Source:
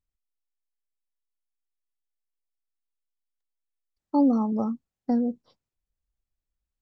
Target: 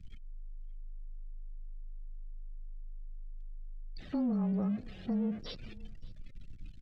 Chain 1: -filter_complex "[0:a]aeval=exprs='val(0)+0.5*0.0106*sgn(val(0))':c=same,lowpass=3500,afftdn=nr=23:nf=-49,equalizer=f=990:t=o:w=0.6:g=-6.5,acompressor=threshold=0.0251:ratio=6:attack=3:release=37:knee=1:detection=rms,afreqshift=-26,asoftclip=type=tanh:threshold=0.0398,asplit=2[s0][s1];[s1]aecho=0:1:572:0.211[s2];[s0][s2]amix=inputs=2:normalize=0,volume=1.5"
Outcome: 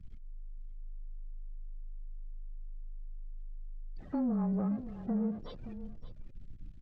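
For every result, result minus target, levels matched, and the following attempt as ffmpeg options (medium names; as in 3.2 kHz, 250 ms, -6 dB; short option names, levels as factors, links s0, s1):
4 kHz band -11.0 dB; echo-to-direct +9.5 dB; 1 kHz band +3.5 dB
-filter_complex "[0:a]aeval=exprs='val(0)+0.5*0.0106*sgn(val(0))':c=same,lowpass=3500,highshelf=f=2300:g=9.5,afftdn=nr=23:nf=-49,equalizer=f=990:t=o:w=0.6:g=-6.5,acompressor=threshold=0.0251:ratio=6:attack=3:release=37:knee=1:detection=rms,afreqshift=-26,asoftclip=type=tanh:threshold=0.0398,asplit=2[s0][s1];[s1]aecho=0:1:572:0.211[s2];[s0][s2]amix=inputs=2:normalize=0,volume=1.5"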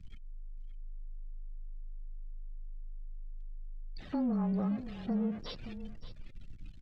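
echo-to-direct +9.5 dB; 1 kHz band +4.5 dB
-filter_complex "[0:a]aeval=exprs='val(0)+0.5*0.0106*sgn(val(0))':c=same,lowpass=3500,highshelf=f=2300:g=9.5,afftdn=nr=23:nf=-49,equalizer=f=990:t=o:w=0.6:g=-6.5,acompressor=threshold=0.0251:ratio=6:attack=3:release=37:knee=1:detection=rms,afreqshift=-26,asoftclip=type=tanh:threshold=0.0398,asplit=2[s0][s1];[s1]aecho=0:1:572:0.0708[s2];[s0][s2]amix=inputs=2:normalize=0,volume=1.5"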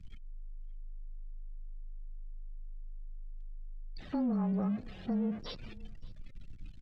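1 kHz band +4.0 dB
-filter_complex "[0:a]aeval=exprs='val(0)+0.5*0.0106*sgn(val(0))':c=same,lowpass=3500,highshelf=f=2300:g=9.5,afftdn=nr=23:nf=-49,equalizer=f=990:t=o:w=0.6:g=-15,acompressor=threshold=0.0251:ratio=6:attack=3:release=37:knee=1:detection=rms,afreqshift=-26,asoftclip=type=tanh:threshold=0.0398,asplit=2[s0][s1];[s1]aecho=0:1:572:0.0708[s2];[s0][s2]amix=inputs=2:normalize=0,volume=1.5"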